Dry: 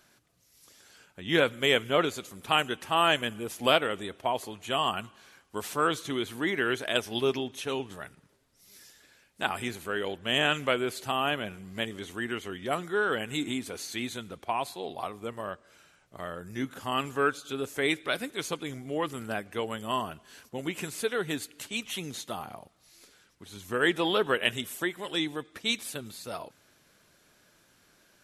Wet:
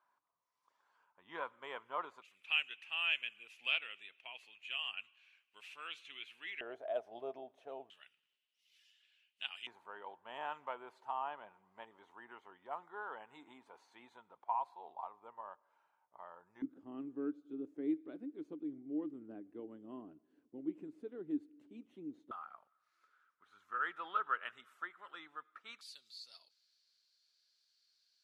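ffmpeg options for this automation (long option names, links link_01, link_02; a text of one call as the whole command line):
ffmpeg -i in.wav -af "asetnsamples=nb_out_samples=441:pad=0,asendcmd='2.22 bandpass f 2600;6.61 bandpass f 660;7.9 bandpass f 2900;9.67 bandpass f 920;16.62 bandpass f 300;22.31 bandpass f 1300;25.81 bandpass f 4500',bandpass=frequency=1000:width_type=q:width=8.3:csg=0" out.wav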